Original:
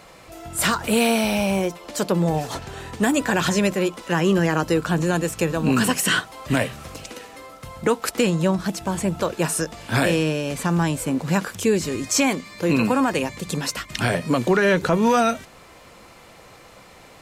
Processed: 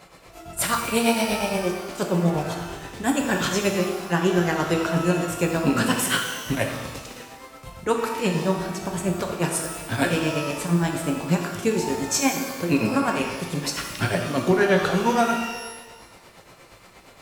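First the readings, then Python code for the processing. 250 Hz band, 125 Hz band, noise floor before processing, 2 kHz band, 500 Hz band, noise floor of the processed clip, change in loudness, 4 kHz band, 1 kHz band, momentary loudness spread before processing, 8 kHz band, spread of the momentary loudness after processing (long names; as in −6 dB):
−2.5 dB, −2.0 dB, −47 dBFS, −2.0 dB, −2.0 dB, −49 dBFS, −2.0 dB, −1.5 dB, −1.0 dB, 9 LU, −1.5 dB, 9 LU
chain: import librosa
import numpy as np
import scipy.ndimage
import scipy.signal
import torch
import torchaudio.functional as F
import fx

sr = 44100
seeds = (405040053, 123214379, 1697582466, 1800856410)

y = fx.tremolo_shape(x, sr, shape='triangle', hz=8.5, depth_pct=95)
y = fx.rev_shimmer(y, sr, seeds[0], rt60_s=1.2, semitones=12, shimmer_db=-8, drr_db=2.0)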